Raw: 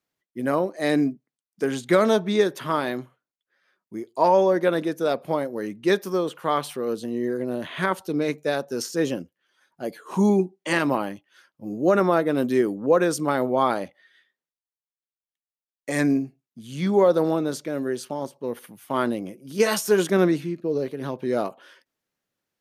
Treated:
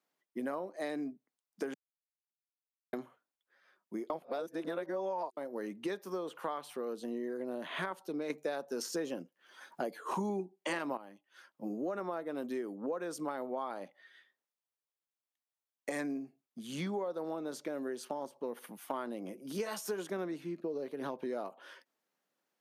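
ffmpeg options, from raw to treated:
-filter_complex "[0:a]asplit=7[a][b][c][d][e][f][g];[a]atrim=end=1.74,asetpts=PTS-STARTPTS,afade=t=out:st=1.736:d=0.004:c=hsin[h];[b]atrim=start=1.74:end=2.93,asetpts=PTS-STARTPTS,volume=0[i];[c]atrim=start=2.93:end=4.102,asetpts=PTS-STARTPTS,afade=t=in:d=0.004:c=hsin[j];[d]atrim=start=4.098:end=5.372,asetpts=PTS-STARTPTS,areverse[k];[e]atrim=start=5.368:end=8.302[l];[f]atrim=start=8.298:end=10.972,asetpts=PTS-STARTPTS,volume=11.5dB[m];[g]atrim=start=10.968[n];[h][i][j]concat=n=3:v=0:a=1[o];[o][k]acrossfade=d=0.004:c1=hsin:c2=hsin[p];[p][l]acrossfade=d=0.004:c1=hsin:c2=hsin[q];[q][m]acrossfade=d=0.004:c1=hsin:c2=hsin[r];[r][n]acrossfade=d=0.004:c1=hsin:c2=hsin,highpass=f=180:w=0.5412,highpass=f=180:w=1.3066,equalizer=f=850:t=o:w=1.5:g=5.5,acompressor=threshold=-32dB:ratio=8,volume=-3dB"

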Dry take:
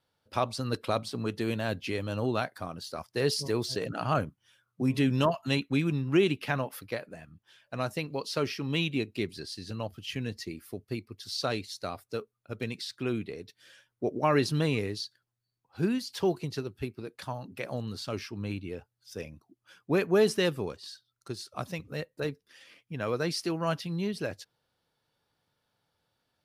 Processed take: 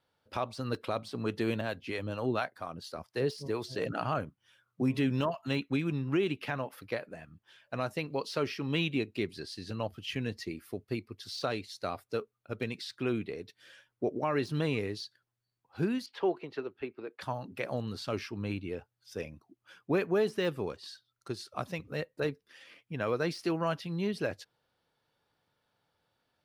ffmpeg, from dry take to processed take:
-filter_complex "[0:a]asettb=1/sr,asplit=3[a][b][c];[a]atrim=end=1.614[d];[b]atrim=start=1.61:end=3.79,asetpts=PTS-STARTPTS,afade=t=in:d=0.004:c=qsin,afade=t=out:st=2.176:d=0.004:c=qsin,acrossover=split=530[e][f];[e]aeval=exprs='val(0)*(1-0.7/2+0.7/2*cos(2*PI*4.3*n/s))':c=same[g];[f]aeval=exprs='val(0)*(1-0.7/2-0.7/2*cos(2*PI*4.3*n/s))':c=same[h];[g][h]amix=inputs=2:normalize=0[i];[c]atrim=start=3.786[j];[d][i]acrossfade=d=0.004:c1=hsin:c2=qsin[k];[k][j]acrossfade=d=0.004:c1=qsin:c2=hsin,asettb=1/sr,asplit=3[l][m][n];[l]atrim=end=16.064[o];[m]atrim=start=16.06:end=17.21,asetpts=PTS-STARTPTS,afade=t=in:d=0.004:c=qsin,afade=t=out:st=1.146:d=0.004:c=qsin,acrossover=split=270 3400:gain=0.126 1 0.0794[p][q][r];[p][q][r]amix=inputs=3:normalize=0[s];[n]atrim=start=17.206[t];[o][s]acrossfade=d=0.004:c1=hsin:c2=qsin[u];[u][t]acrossfade=d=0.004:c1=qsin:c2=hsin,deesser=0.85,bass=f=250:g=-3,treble=f=4k:g=-6,alimiter=limit=-21dB:level=0:latency=1:release=444,volume=1.5dB"

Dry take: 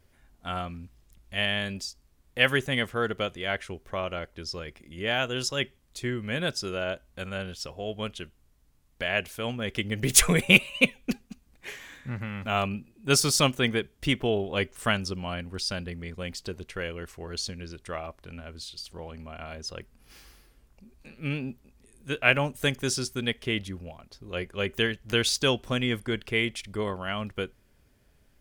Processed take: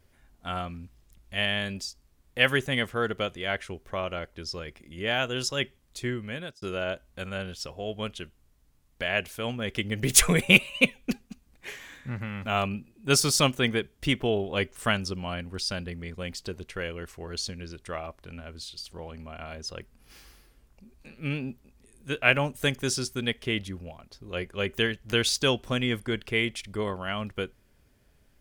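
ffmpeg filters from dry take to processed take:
-filter_complex "[0:a]asplit=2[a][b];[a]atrim=end=6.62,asetpts=PTS-STARTPTS,afade=t=out:st=6.1:d=0.52[c];[b]atrim=start=6.62,asetpts=PTS-STARTPTS,afade=t=in:d=0.004:c=hsin[d];[c][d]concat=n=2:v=0:a=1"

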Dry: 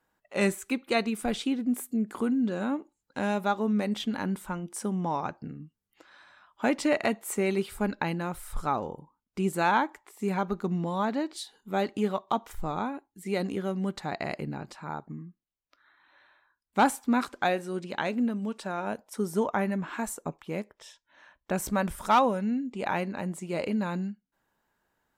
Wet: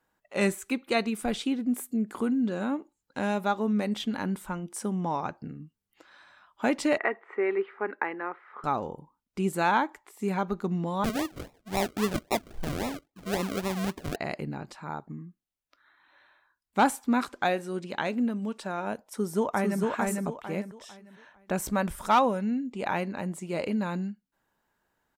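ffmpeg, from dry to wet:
-filter_complex "[0:a]asettb=1/sr,asplit=3[a][b][c];[a]atrim=end=6.984[d];[b]atrim=start=6.98:end=8.64,asetpts=PTS-STARTPTS,afade=t=in:d=0.004:c=qsin,afade=t=out:st=1.656:d=0.004:c=qsin,highpass=f=340:w=0.5412,highpass=f=340:w=1.3066,equalizer=f=400:t=q:w=4:g=4,equalizer=f=590:t=q:w=4:g=-6,equalizer=f=1.2k:t=q:w=4:g=4,equalizer=f=1.9k:t=q:w=4:g=7,lowpass=f=2.1k:w=0.5412,lowpass=f=2.1k:w=1.3066[e];[c]atrim=start=8.636[f];[d][e]acrossfade=d=0.004:c1=hsin:c2=qsin[g];[g][f]acrossfade=d=0.004:c1=qsin:c2=hsin,asettb=1/sr,asplit=3[h][i][j];[h]atrim=end=11.044[k];[i]atrim=start=11.04:end=14.16,asetpts=PTS-STARTPTS,afade=t=in:d=0.004:c=qsin,afade=t=out:st=3.116:d=0.004:c=qsin,acrusher=samples=40:mix=1:aa=0.000001:lfo=1:lforange=24:lforate=3.7[l];[j]atrim=start=14.156[m];[k][l]acrossfade=d=0.004:c1=hsin:c2=qsin[n];[n][m]acrossfade=d=0.004:c1=qsin:c2=hsin,asplit=2[o][p];[p]afade=t=in:st=19.01:d=0.01,afade=t=out:st=19.81:d=0.01,aecho=0:1:450|900|1350|1800:0.794328|0.238298|0.0714895|0.0214469[q];[o][q]amix=inputs=2:normalize=0"

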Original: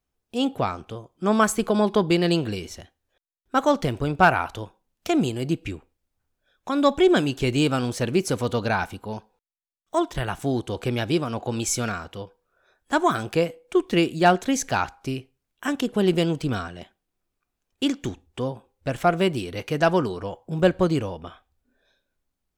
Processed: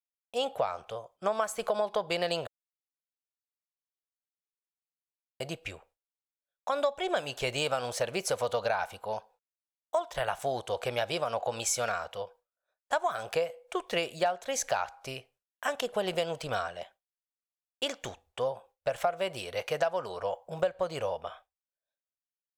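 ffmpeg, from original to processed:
-filter_complex "[0:a]asplit=3[a][b][c];[a]atrim=end=2.47,asetpts=PTS-STARTPTS,afade=t=out:st=2.466:d=0.004:c=hsin[d];[b]atrim=start=2.47:end=5.4,asetpts=PTS-STARTPTS,volume=0[e];[c]atrim=start=5.4,asetpts=PTS-STARTPTS,afade=t=in:d=0.004:c=hsin[f];[d][e][f]concat=n=3:v=0:a=1,agate=range=-33dB:threshold=-49dB:ratio=3:detection=peak,lowshelf=f=420:t=q:w=3:g=-11,acompressor=threshold=-23dB:ratio=10,volume=-2dB"

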